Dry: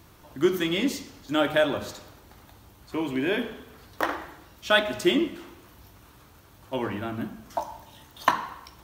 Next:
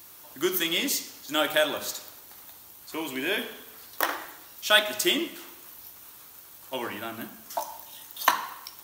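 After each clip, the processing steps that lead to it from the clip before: RIAA curve recording; gain -1 dB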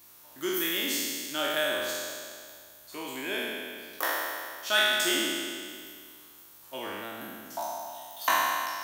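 spectral trails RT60 2.09 s; gain -8 dB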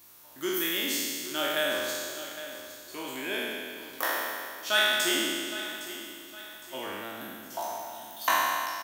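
feedback echo 0.811 s, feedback 40%, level -13.5 dB

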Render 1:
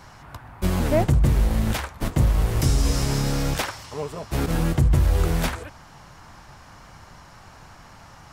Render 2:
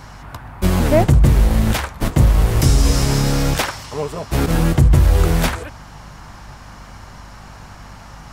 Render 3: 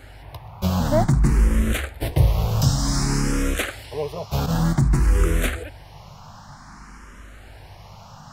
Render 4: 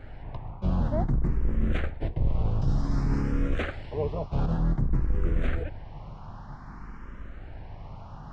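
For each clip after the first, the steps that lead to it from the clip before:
hum 50 Hz, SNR 25 dB; gain +6.5 dB
endless phaser +0.54 Hz; gain -2 dB
octaver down 2 oct, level +2 dB; reverse; compressor 6:1, threshold -21 dBFS, peak gain reduction 13.5 dB; reverse; tape spacing loss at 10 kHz 34 dB

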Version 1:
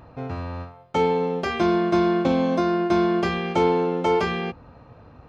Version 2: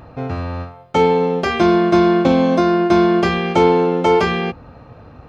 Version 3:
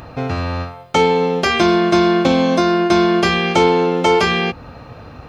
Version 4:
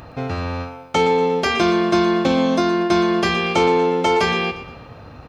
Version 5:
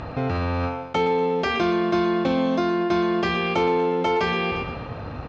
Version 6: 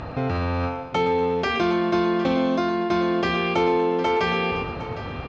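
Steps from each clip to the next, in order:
notch 980 Hz, Q 17; gain +7 dB
in parallel at +2 dB: compressor, threshold -23 dBFS, peak gain reduction 14 dB; on the sum: high shelf 2100 Hz +10 dB; gain -3.5 dB
feedback echo 0.118 s, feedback 43%, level -12.5 dB; gain -3.5 dB
in parallel at 0 dB: negative-ratio compressor -29 dBFS, ratio -1; on the sum: air absorption 140 m; gain -5.5 dB
echo 0.759 s -14 dB

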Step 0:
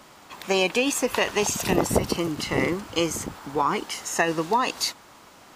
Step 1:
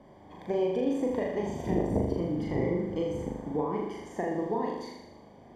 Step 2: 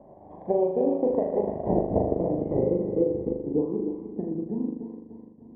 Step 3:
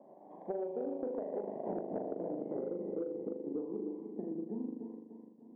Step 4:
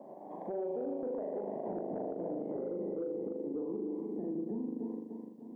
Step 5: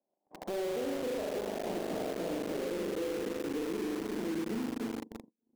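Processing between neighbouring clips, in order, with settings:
compressor 2:1, threshold -29 dBFS, peak gain reduction 8 dB; running mean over 33 samples; on a send: flutter echo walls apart 6.8 m, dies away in 0.92 s
thinning echo 0.296 s, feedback 57%, high-pass 410 Hz, level -4 dB; transient shaper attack +3 dB, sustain -9 dB; low-pass sweep 690 Hz -> 250 Hz, 2.24–4.41
HPF 200 Hz 24 dB/oct; soft clip -11 dBFS, distortion -27 dB; compressor, threshold -28 dBFS, peak gain reduction 9 dB; gain -6.5 dB
limiter -37.5 dBFS, peak gain reduction 11.5 dB; gain +7.5 dB
gate -43 dBFS, range -32 dB; in parallel at -6 dB: companded quantiser 2-bit; on the sum: gain -5 dB

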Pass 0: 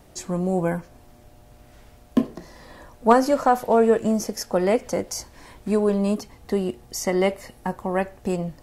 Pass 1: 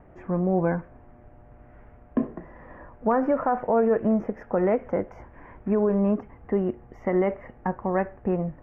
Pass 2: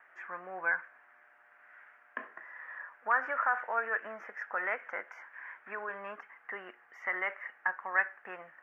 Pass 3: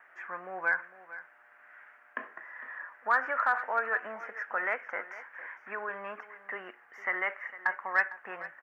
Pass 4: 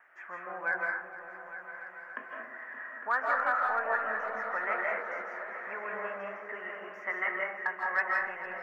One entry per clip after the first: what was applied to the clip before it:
inverse Chebyshev low-pass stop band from 3900 Hz, stop band 40 dB; limiter -14 dBFS, peak gain reduction 9.5 dB
resonant high-pass 1600 Hz, resonance Q 3.1
in parallel at -10 dB: overloaded stage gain 22 dB; on the sum: echo 0.455 s -16 dB
repeats that get brighter 0.285 s, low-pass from 200 Hz, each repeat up 2 oct, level -6 dB; digital reverb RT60 0.7 s, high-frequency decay 0.35×, pre-delay 0.12 s, DRR -1.5 dB; gain -3.5 dB

